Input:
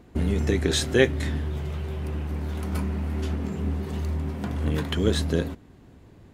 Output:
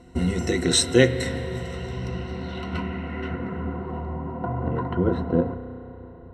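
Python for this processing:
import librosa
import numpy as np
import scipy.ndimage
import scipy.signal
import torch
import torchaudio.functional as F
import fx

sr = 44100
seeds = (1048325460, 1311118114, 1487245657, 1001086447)

y = fx.ripple_eq(x, sr, per_octave=2.0, db=15)
y = fx.filter_sweep_lowpass(y, sr, from_hz=8500.0, to_hz=970.0, start_s=1.61, end_s=4.07, q=1.8)
y = fx.rev_spring(y, sr, rt60_s=3.8, pass_ms=(32,), chirp_ms=70, drr_db=10.5)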